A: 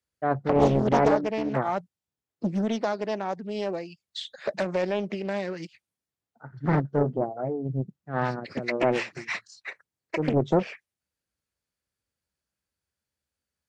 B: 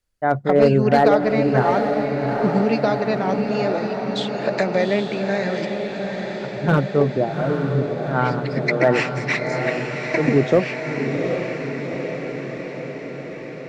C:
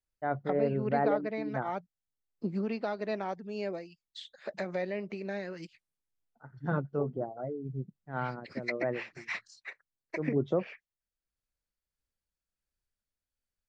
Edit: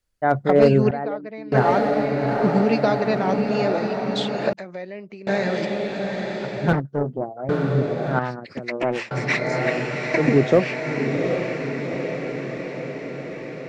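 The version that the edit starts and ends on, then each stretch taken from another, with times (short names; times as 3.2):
B
0.91–1.52 from C
4.53–5.27 from C
6.73–7.49 from A
8.19–9.11 from A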